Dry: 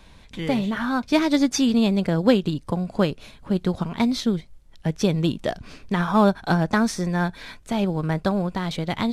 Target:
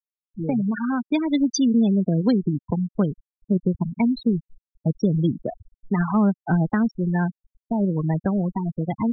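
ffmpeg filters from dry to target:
-filter_complex "[0:a]afftfilt=real='re*gte(hypot(re,im),0.158)':imag='im*gte(hypot(re,im),0.158)':win_size=1024:overlap=0.75,adynamicequalizer=threshold=0.00398:dfrequency=560:dqfactor=4.1:tfrequency=560:tqfactor=4.1:attack=5:release=100:ratio=0.375:range=2.5:mode=cutabove:tftype=bell,acrossover=split=280|3000[a][b][c];[b]acompressor=threshold=-28dB:ratio=6[d];[a][d][c]amix=inputs=3:normalize=0,volume=2.5dB"

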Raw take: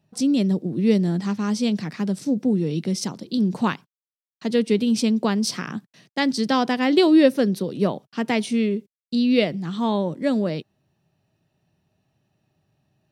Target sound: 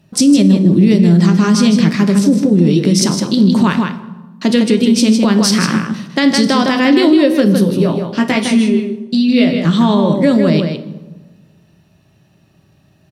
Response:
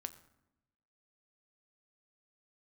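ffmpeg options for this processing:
-filter_complex "[0:a]equalizer=f=780:w=3.9:g=-6,bandreject=f=460:w=12,acompressor=threshold=-23dB:ratio=6,asettb=1/sr,asplit=3[a][b][c];[a]atrim=end=7.564[d];[b]atrim=start=7.56:end=9.65,asetpts=PTS-STARTPTS,afade=t=in:d=0.004:c=qsin,afade=t=out:st=2.086:d=0.004:c=qsin,flanger=delay=15.5:depth=2.9:speed=1.2[e];[c]atrim=start=9.646[f];[d][e]acrossfade=d=0.004:c1=hsin:c2=qsin[g];[g][f]acrossfade=d=0.004:c1=qsin:c2=hsin,asplit=2[h][i];[i]adelay=157.4,volume=-6dB,highshelf=f=4k:g=-3.54[j];[h][j]amix=inputs=2:normalize=0[k];[1:a]atrim=start_sample=2205,asetrate=30429,aresample=44100[l];[k][l]afir=irnorm=-1:irlink=0,alimiter=level_in=18.5dB:limit=-1dB:release=50:level=0:latency=1,volume=-1dB"

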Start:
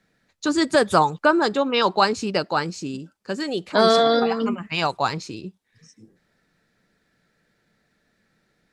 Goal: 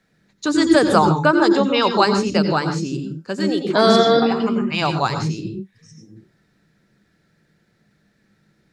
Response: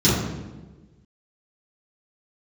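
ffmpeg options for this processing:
-filter_complex "[0:a]asplit=2[a][b];[1:a]atrim=start_sample=2205,atrim=end_sample=3528,adelay=85[c];[b][c]afir=irnorm=-1:irlink=0,volume=-24dB[d];[a][d]amix=inputs=2:normalize=0,volume=1.5dB"

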